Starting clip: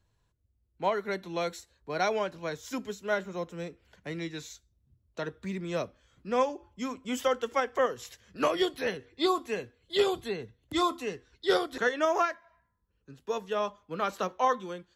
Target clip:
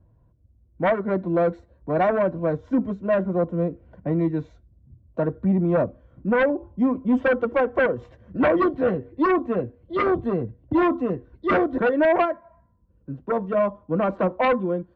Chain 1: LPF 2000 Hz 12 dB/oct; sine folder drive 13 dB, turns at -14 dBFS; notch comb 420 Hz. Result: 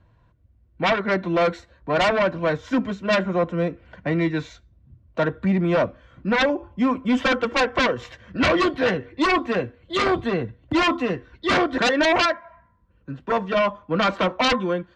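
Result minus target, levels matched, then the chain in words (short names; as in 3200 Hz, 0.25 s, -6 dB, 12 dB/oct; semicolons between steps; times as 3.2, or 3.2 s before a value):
2000 Hz band +5.0 dB
LPF 610 Hz 12 dB/oct; sine folder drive 13 dB, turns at -14 dBFS; notch comb 420 Hz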